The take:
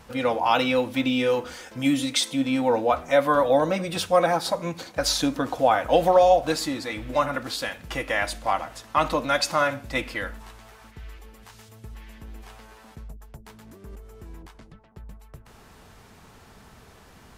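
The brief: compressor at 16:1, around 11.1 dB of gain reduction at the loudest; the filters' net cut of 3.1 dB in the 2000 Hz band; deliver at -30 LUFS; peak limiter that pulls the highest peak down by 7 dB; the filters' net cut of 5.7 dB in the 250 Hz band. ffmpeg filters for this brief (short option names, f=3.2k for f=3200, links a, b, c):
-af "equalizer=f=250:t=o:g=-6.5,equalizer=f=2k:t=o:g=-4,acompressor=threshold=-25dB:ratio=16,volume=2.5dB,alimiter=limit=-19.5dB:level=0:latency=1"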